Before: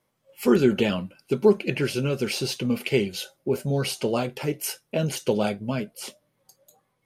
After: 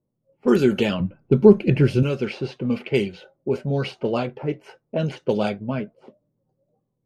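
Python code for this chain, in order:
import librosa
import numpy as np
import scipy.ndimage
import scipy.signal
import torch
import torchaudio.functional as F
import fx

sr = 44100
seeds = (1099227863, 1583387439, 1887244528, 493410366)

y = fx.riaa(x, sr, side='playback', at=(1.0, 2.03))
y = fx.env_lowpass(y, sr, base_hz=340.0, full_db=-16.5)
y = F.gain(torch.from_numpy(y), 1.5).numpy()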